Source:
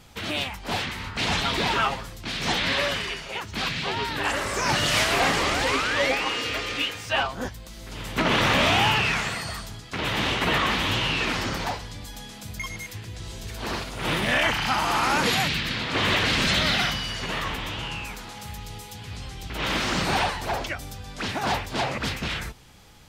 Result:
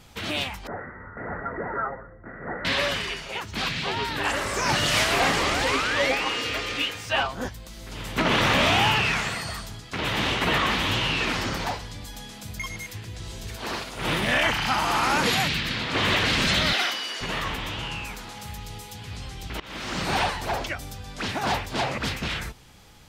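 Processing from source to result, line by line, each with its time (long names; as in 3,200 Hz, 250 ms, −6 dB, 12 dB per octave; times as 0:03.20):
0:00.67–0:02.65: Chebyshev low-pass with heavy ripple 2,000 Hz, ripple 9 dB
0:13.56–0:13.98: low-shelf EQ 180 Hz −8.5 dB
0:16.73–0:17.21: Chebyshev high-pass filter 320 Hz, order 3
0:19.60–0:20.22: fade in, from −23 dB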